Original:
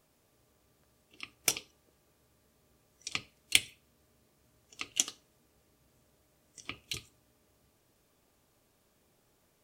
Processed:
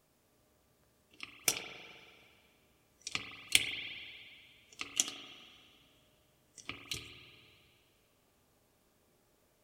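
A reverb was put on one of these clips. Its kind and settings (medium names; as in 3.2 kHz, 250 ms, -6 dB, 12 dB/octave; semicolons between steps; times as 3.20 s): spring tank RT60 2.2 s, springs 39/53 ms, chirp 55 ms, DRR 4.5 dB; trim -2 dB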